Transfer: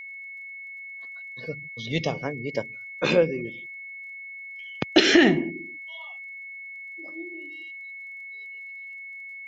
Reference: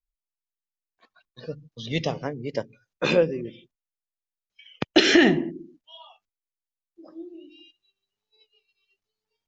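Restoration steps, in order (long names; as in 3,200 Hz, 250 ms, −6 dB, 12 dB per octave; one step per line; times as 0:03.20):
click removal
notch filter 2,200 Hz, Q 30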